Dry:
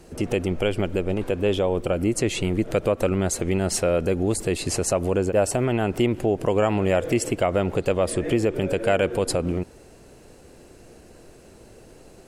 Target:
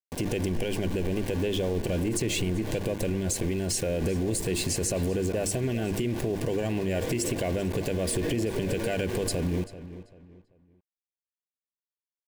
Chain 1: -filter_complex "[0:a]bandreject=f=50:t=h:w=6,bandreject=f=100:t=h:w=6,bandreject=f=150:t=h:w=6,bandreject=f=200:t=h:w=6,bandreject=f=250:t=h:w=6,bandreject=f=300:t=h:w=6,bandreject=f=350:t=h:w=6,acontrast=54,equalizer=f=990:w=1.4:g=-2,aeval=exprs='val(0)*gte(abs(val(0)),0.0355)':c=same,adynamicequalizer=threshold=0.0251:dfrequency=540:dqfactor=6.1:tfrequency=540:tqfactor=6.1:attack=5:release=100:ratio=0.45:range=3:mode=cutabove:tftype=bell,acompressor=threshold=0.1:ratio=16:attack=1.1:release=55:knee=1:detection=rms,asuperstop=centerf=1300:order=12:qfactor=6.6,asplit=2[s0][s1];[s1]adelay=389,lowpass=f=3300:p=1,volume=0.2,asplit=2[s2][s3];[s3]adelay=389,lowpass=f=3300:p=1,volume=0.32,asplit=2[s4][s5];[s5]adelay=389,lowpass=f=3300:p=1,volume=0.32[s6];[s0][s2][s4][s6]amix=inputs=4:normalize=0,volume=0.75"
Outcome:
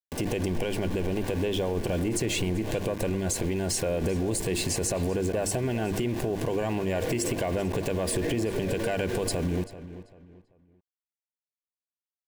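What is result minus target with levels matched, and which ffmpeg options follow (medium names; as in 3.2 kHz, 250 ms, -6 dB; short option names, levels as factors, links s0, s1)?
1 kHz band +3.5 dB
-filter_complex "[0:a]bandreject=f=50:t=h:w=6,bandreject=f=100:t=h:w=6,bandreject=f=150:t=h:w=6,bandreject=f=200:t=h:w=6,bandreject=f=250:t=h:w=6,bandreject=f=300:t=h:w=6,bandreject=f=350:t=h:w=6,acontrast=54,equalizer=f=990:w=1.4:g=-13.5,aeval=exprs='val(0)*gte(abs(val(0)),0.0355)':c=same,adynamicequalizer=threshold=0.0251:dfrequency=540:dqfactor=6.1:tfrequency=540:tqfactor=6.1:attack=5:release=100:ratio=0.45:range=3:mode=cutabove:tftype=bell,acompressor=threshold=0.1:ratio=16:attack=1.1:release=55:knee=1:detection=rms,asuperstop=centerf=1300:order=12:qfactor=6.6,asplit=2[s0][s1];[s1]adelay=389,lowpass=f=3300:p=1,volume=0.2,asplit=2[s2][s3];[s3]adelay=389,lowpass=f=3300:p=1,volume=0.32,asplit=2[s4][s5];[s5]adelay=389,lowpass=f=3300:p=1,volume=0.32[s6];[s0][s2][s4][s6]amix=inputs=4:normalize=0,volume=0.75"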